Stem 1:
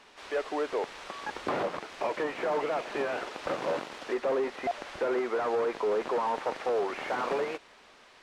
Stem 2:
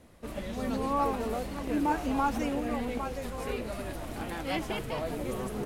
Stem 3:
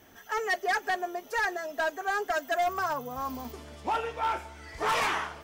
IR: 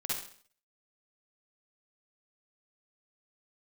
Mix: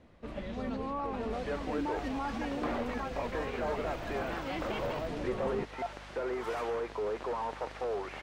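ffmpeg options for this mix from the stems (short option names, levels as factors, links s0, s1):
-filter_complex "[0:a]aeval=exprs='val(0)+0.00562*(sin(2*PI*50*n/s)+sin(2*PI*2*50*n/s)/2+sin(2*PI*3*50*n/s)/3+sin(2*PI*4*50*n/s)/4+sin(2*PI*5*50*n/s)/5)':c=same,adelay=1150,volume=0.501[s0];[1:a]lowpass=3800,volume=0.75[s1];[2:a]adelay=1550,volume=0.133[s2];[s1][s2]amix=inputs=2:normalize=0,alimiter=level_in=1.5:limit=0.0631:level=0:latency=1:release=61,volume=0.668,volume=1[s3];[s0][s3]amix=inputs=2:normalize=0"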